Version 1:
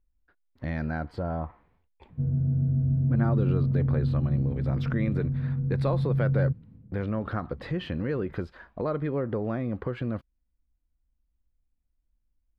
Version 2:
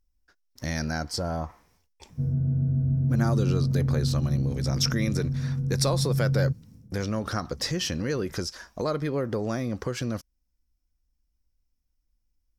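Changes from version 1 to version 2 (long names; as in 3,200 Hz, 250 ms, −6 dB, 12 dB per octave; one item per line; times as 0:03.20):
speech: add parametric band 5,500 Hz +14 dB 0.34 octaves
master: remove high-frequency loss of the air 430 metres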